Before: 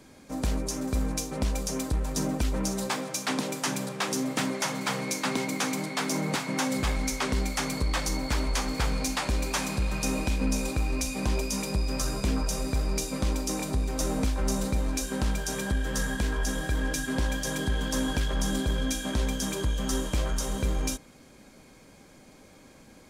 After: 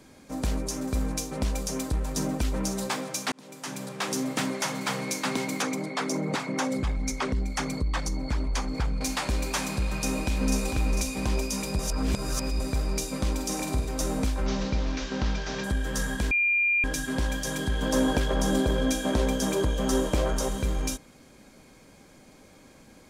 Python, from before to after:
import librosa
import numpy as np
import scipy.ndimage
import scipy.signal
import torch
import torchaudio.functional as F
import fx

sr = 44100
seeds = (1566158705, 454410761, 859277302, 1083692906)

y = fx.envelope_sharpen(x, sr, power=1.5, at=(5.62, 9.01))
y = fx.echo_throw(y, sr, start_s=9.89, length_s=0.68, ms=450, feedback_pct=40, wet_db=-5.5)
y = fx.room_flutter(y, sr, wall_m=8.4, rt60_s=0.5, at=(13.34, 13.89))
y = fx.delta_mod(y, sr, bps=32000, step_db=-33.5, at=(14.46, 15.64))
y = fx.peak_eq(y, sr, hz=510.0, db=9.0, octaves=2.2, at=(17.82, 20.49))
y = fx.edit(y, sr, fx.fade_in_span(start_s=3.32, length_s=0.8),
    fx.reverse_span(start_s=11.79, length_s=0.81),
    fx.bleep(start_s=16.31, length_s=0.53, hz=2400.0, db=-20.5), tone=tone)